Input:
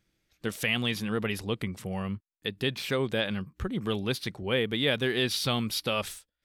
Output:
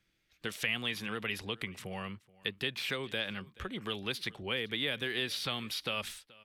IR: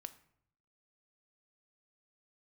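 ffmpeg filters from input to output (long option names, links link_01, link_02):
-filter_complex "[0:a]acrossover=split=320|2200|7200[link_01][link_02][link_03][link_04];[link_01]acompressor=threshold=-40dB:ratio=4[link_05];[link_02]acompressor=threshold=-35dB:ratio=4[link_06];[link_03]acompressor=threshold=-38dB:ratio=4[link_07];[link_04]acompressor=threshold=-45dB:ratio=4[link_08];[link_05][link_06][link_07][link_08]amix=inputs=4:normalize=0,acrossover=split=650|3300[link_09][link_10][link_11];[link_10]crystalizer=i=6.5:c=0[link_12];[link_09][link_12][link_11]amix=inputs=3:normalize=0,aecho=1:1:429:0.0708,volume=-4dB"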